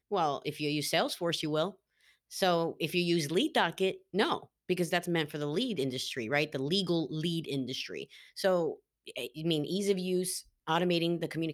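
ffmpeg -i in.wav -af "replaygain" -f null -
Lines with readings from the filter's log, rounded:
track_gain = +10.9 dB
track_peak = 0.139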